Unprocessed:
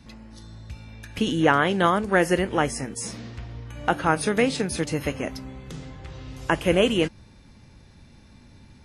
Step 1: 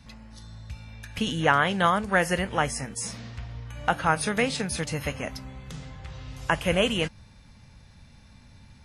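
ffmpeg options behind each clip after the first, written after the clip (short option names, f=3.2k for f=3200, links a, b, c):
-af "equalizer=f=340:t=o:w=0.88:g=-11"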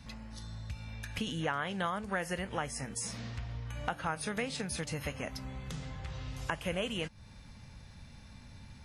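-af "acompressor=threshold=-37dB:ratio=2.5"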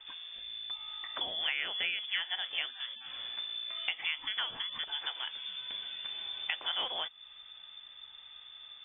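-af "lowpass=f=3.1k:t=q:w=0.5098,lowpass=f=3.1k:t=q:w=0.6013,lowpass=f=3.1k:t=q:w=0.9,lowpass=f=3.1k:t=q:w=2.563,afreqshift=-3600"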